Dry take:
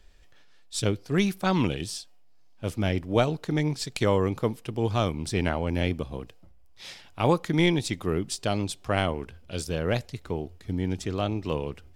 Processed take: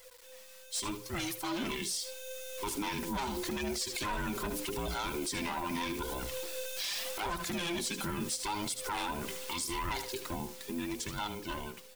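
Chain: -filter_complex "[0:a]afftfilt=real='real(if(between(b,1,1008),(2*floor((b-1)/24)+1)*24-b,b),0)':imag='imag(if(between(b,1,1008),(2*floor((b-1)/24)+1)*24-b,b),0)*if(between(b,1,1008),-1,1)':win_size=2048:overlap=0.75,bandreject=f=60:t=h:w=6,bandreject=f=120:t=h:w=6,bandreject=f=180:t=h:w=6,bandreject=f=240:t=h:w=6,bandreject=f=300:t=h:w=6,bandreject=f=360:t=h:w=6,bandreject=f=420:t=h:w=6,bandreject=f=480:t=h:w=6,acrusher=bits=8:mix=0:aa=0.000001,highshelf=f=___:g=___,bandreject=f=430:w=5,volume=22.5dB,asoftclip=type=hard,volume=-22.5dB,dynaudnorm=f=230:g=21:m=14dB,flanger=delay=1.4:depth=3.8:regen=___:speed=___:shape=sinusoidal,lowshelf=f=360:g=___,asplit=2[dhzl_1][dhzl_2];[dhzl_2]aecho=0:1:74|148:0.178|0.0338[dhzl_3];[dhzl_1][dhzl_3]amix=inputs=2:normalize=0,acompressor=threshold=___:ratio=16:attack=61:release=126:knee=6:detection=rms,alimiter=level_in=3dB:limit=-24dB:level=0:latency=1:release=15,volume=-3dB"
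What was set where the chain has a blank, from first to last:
4700, 10.5, 36, 0.8, -7.5, -32dB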